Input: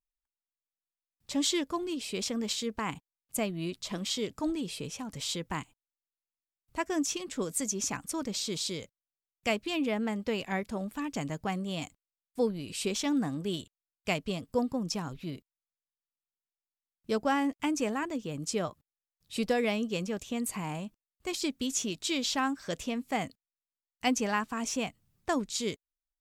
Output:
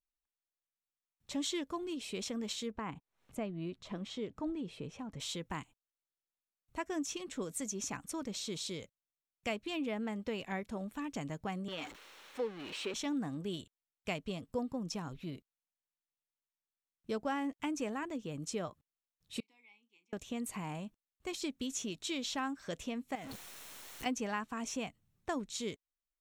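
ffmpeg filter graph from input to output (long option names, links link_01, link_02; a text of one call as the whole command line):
ffmpeg -i in.wav -filter_complex "[0:a]asettb=1/sr,asplit=3[link_01][link_02][link_03];[link_01]atrim=end=2.714[link_04];[link_02]atrim=start=2.71:end=5.2,asetpts=PTS-STARTPTS,afade=type=in:duration=0.004:curve=qsin,afade=type=out:start_time=2.486:duration=0.004:curve=qsin,lowpass=frequency=1500:poles=1,acompressor=mode=upward:threshold=-43dB:ratio=2.5:attack=3.2:release=140:knee=2.83:detection=peak[link_05];[link_03]atrim=start=5.196[link_06];[link_04][link_05]acrossfade=duration=0.004:curve1=hsin:curve2=qsin[link_07];[link_07][link_06]acrossfade=duration=0.004:curve1=qsin:curve2=hsin,asettb=1/sr,asplit=3[link_08][link_09][link_10];[link_08]atrim=end=11.684[link_11];[link_09]atrim=start=11.68:end=12.94,asetpts=PTS-STARTPTS,afade=type=in:duration=0.004:curve=qsin,afade=type=out:start_time=1.256:duration=0.004:curve=qsin,aeval=exprs='val(0)+0.5*0.0224*sgn(val(0))':channel_layout=same,acrossover=split=320 4800:gain=0.126 1 0.158[link_12][link_13][link_14];[link_12][link_13][link_14]amix=inputs=3:normalize=0,bandreject=frequency=690:width=6.3[link_15];[link_10]atrim=start=12.936[link_16];[link_11][link_15]acrossfade=duration=0.004:curve1=hsin:curve2=qsin[link_17];[link_17][link_16]acrossfade=duration=0.004:curve1=qsin:curve2=hsin,asettb=1/sr,asplit=3[link_18][link_19][link_20];[link_18]atrim=end=19.404[link_21];[link_19]atrim=start=19.4:end=20.13,asetpts=PTS-STARTPTS,afade=type=in:duration=0.004:curve=qsin,afade=type=out:start_time=0.726:duration=0.004:curve=qsin,asplit=3[link_22][link_23][link_24];[link_22]bandpass=frequency=300:width_type=q:width=8,volume=0dB[link_25];[link_23]bandpass=frequency=870:width_type=q:width=8,volume=-6dB[link_26];[link_24]bandpass=frequency=2240:width_type=q:width=8,volume=-9dB[link_27];[link_25][link_26][link_27]amix=inputs=3:normalize=0,aderivative,asplit=2[link_28][link_29];[link_29]adelay=34,volume=-12.5dB[link_30];[link_28][link_30]amix=inputs=2:normalize=0,atrim=end_sample=32193[link_31];[link_20]atrim=start=20.126[link_32];[link_21][link_31]acrossfade=duration=0.004:curve1=hsin:curve2=qsin[link_33];[link_33][link_32]acrossfade=duration=0.004:curve1=qsin:curve2=hsin,asettb=1/sr,asplit=3[link_34][link_35][link_36];[link_34]atrim=end=23.154[link_37];[link_35]atrim=start=23.15:end=24.06,asetpts=PTS-STARTPTS,afade=type=in:duration=0.004:curve=qsin,afade=type=out:start_time=0.906:duration=0.004:curve=qsin,aeval=exprs='val(0)+0.5*0.0237*sgn(val(0))':channel_layout=same,lowshelf=frequency=160:gain=-6.5,acompressor=threshold=-36dB:ratio=10:attack=3.2:release=140:knee=1:detection=peak[link_38];[link_36]atrim=start=24.056[link_39];[link_37][link_38]acrossfade=duration=0.004:curve1=hsin:curve2=qsin[link_40];[link_40][link_39]acrossfade=duration=0.004:curve1=qsin:curve2=hsin,highshelf=frequency=7600:gain=-5.5,bandreject=frequency=4800:width=9.8,acompressor=threshold=-35dB:ratio=1.5,volume=-3.5dB" out.wav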